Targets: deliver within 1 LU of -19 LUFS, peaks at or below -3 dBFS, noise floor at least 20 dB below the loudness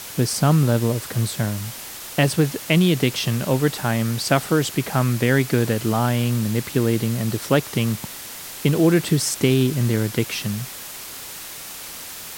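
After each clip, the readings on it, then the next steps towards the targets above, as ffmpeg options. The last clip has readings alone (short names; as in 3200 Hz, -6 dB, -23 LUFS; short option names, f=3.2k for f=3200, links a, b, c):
noise floor -36 dBFS; noise floor target -41 dBFS; loudness -21.0 LUFS; peak -2.5 dBFS; loudness target -19.0 LUFS
-> -af "afftdn=nr=6:nf=-36"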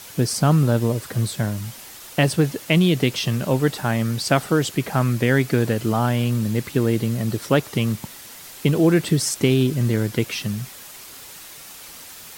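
noise floor -41 dBFS; loudness -21.0 LUFS; peak -3.0 dBFS; loudness target -19.0 LUFS
-> -af "volume=2dB,alimiter=limit=-3dB:level=0:latency=1"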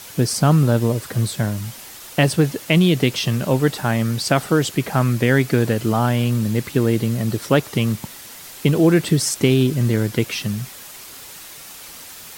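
loudness -19.0 LUFS; peak -3.0 dBFS; noise floor -39 dBFS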